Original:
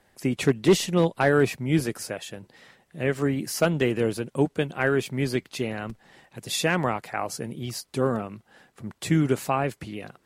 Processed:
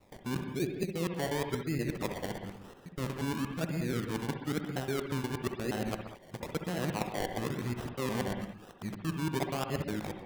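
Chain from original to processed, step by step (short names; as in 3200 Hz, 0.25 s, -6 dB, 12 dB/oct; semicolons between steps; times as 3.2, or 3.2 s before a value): local time reversal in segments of 0.119 s; spectral gain 2.84–4.87, 340–790 Hz -6 dB; treble ducked by the level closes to 700 Hz, closed at -21.5 dBFS; reverse; compressor 10:1, threshold -30 dBFS, peak gain reduction 16.5 dB; reverse; decimation with a swept rate 27×, swing 60% 1 Hz; spectral gain 0.4–1.04, 830–2100 Hz -8 dB; on a send: reverb, pre-delay 60 ms, DRR 4.5 dB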